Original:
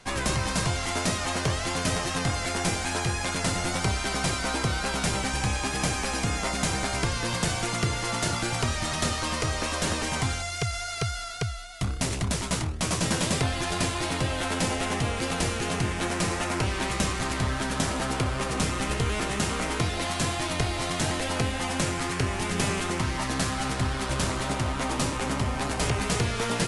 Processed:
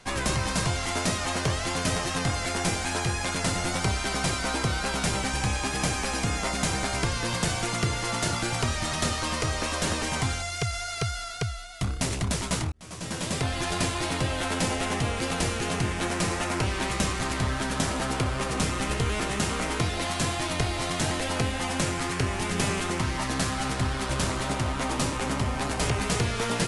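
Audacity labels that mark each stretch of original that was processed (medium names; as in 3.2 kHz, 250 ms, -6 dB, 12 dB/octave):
12.720000	13.620000	fade in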